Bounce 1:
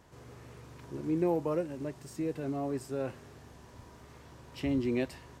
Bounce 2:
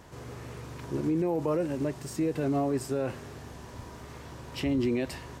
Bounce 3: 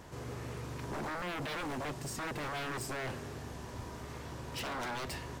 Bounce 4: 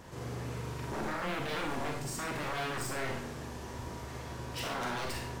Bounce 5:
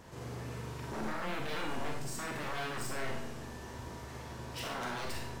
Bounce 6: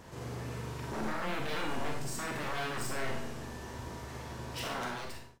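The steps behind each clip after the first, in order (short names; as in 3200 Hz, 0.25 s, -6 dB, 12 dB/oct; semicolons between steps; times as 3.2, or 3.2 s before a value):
limiter -29 dBFS, peak gain reduction 10 dB; gain +8.5 dB
wavefolder -33 dBFS
Schroeder reverb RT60 0.49 s, combs from 33 ms, DRR 1 dB
resonator 220 Hz, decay 0.87 s, mix 70%; gain +7 dB
ending faded out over 0.61 s; gain +2 dB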